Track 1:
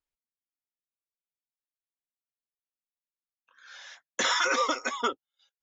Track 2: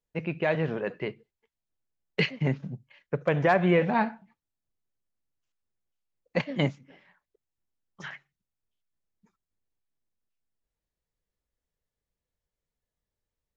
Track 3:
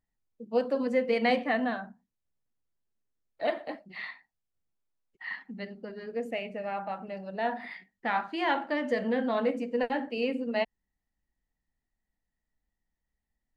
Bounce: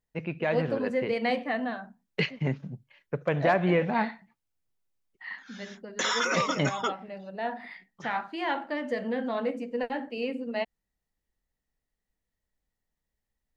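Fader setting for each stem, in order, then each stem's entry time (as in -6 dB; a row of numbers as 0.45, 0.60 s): -2.0, -2.0, -2.0 dB; 1.80, 0.00, 0.00 s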